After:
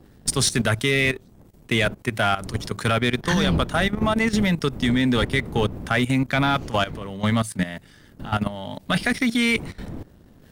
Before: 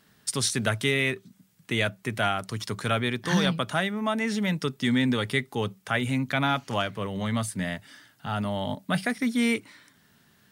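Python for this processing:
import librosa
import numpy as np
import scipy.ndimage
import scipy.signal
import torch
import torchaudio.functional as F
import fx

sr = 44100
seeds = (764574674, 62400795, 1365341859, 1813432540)

y = fx.dmg_wind(x, sr, seeds[0], corner_hz=220.0, level_db=-38.0)
y = fx.peak_eq(y, sr, hz=3200.0, db=7.0, octaves=2.1, at=(8.7, 9.55), fade=0.02)
y = fx.level_steps(y, sr, step_db=14)
y = fx.leveller(y, sr, passes=1)
y = y * 10.0 ** (5.5 / 20.0)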